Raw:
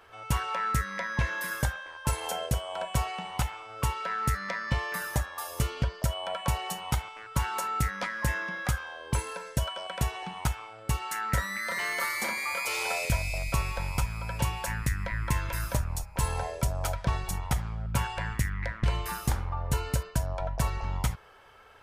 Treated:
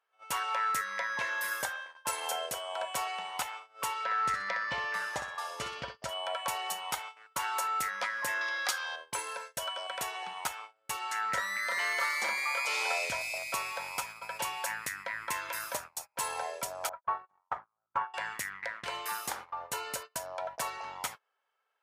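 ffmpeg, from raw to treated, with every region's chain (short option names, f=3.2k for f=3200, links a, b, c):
-filter_complex "[0:a]asettb=1/sr,asplit=3[a][b][c];[a]atrim=end=4.044[d];[b]atrim=start=4.04:end=6.09,asetpts=PTS-STARTPTS,afade=t=in:d=0.004:c=qsin,afade=t=out:st=2.046:d=0.004:c=qsin,lowpass=5.7k,lowshelf=f=150:g=10,aecho=1:1:62|124|186:0.335|0.104|0.0322,atrim=end_sample=90405[e];[c]atrim=start=6.086[f];[d][e]acrossfade=d=0.004:c1=hsin:c2=qsin[g];[g][f]acrossfade=d=0.004:c1=qsin:c2=hsin,asettb=1/sr,asplit=3[h][i][j];[h]atrim=end=8.414[k];[i]atrim=start=8.41:end=8.96,asetpts=PTS-STARTPTS,afade=t=in:d=0.004:c=qsin,afade=t=out:st=0.546:d=0.004:c=qsin,equalizer=f=4.6k:t=o:w=1.1:g=11,acompressor=mode=upward:threshold=-31dB:ratio=2.5:attack=3.2:release=140:knee=2.83:detection=peak,highpass=f=300:w=0.5412,highpass=f=300:w=1.3066[l];[j]atrim=start=8.956[m];[k][l]acrossfade=d=0.004:c1=hsin:c2=qsin[n];[n][m]acrossfade=d=0.004:c1=qsin:c2=hsin,asettb=1/sr,asplit=3[o][p][q];[o]atrim=end=10.974[r];[p]atrim=start=10.97:end=13.21,asetpts=PTS-STARTPTS,afade=t=in:d=0.004:c=qsin,afade=t=out:st=2.236:d=0.004:c=qsin,acrossover=split=7700[s][t];[t]acompressor=threshold=-52dB:ratio=4:attack=1:release=60[u];[s][u]amix=inputs=2:normalize=0,lowshelf=f=190:g=6.5[v];[q]atrim=start=13.206[w];[r][v]acrossfade=d=0.004:c1=hsin:c2=qsin[x];[x][w]acrossfade=d=0.004:c1=qsin:c2=hsin,asettb=1/sr,asplit=3[y][z][aa];[y]atrim=end=16.894[ab];[z]atrim=start=16.89:end=18.14,asetpts=PTS-STARTPTS,afade=t=in:d=0.004:c=qsin,afade=t=out:st=1.246:d=0.004:c=qsin,agate=range=-33dB:threshold=-24dB:ratio=3:release=100:detection=peak,lowpass=f=1.2k:t=q:w=2.5[ac];[aa]atrim=start=18.136[ad];[ab][ac]acrossfade=d=0.004:c1=hsin:c2=qsin[ae];[ae][ad]acrossfade=d=0.004:c1=qsin:c2=hsin,highpass=580,agate=range=-25dB:threshold=-42dB:ratio=16:detection=peak"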